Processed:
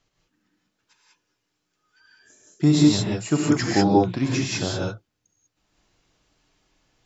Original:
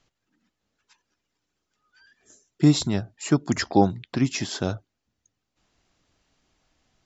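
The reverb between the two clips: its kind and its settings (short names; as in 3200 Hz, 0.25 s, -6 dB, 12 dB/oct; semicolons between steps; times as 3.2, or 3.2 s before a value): non-linear reverb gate 0.22 s rising, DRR -4 dB; gain -2.5 dB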